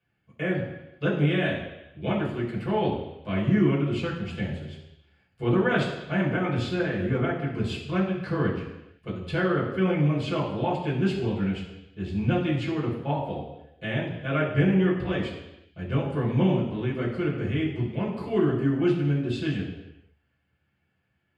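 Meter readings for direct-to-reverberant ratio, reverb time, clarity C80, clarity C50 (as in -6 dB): -7.0 dB, 0.90 s, 7.5 dB, 5.0 dB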